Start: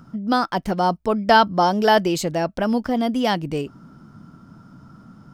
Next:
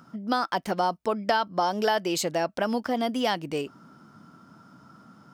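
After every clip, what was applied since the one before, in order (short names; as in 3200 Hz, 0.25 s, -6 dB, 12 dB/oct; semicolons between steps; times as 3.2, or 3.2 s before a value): HPF 460 Hz 6 dB/oct; compressor 6:1, threshold -21 dBFS, peak gain reduction 11 dB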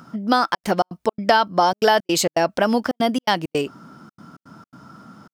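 step gate "xxxxxx.xx.xx." 165 bpm -60 dB; gain +8 dB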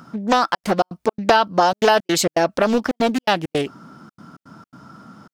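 Doppler distortion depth 0.41 ms; gain +1 dB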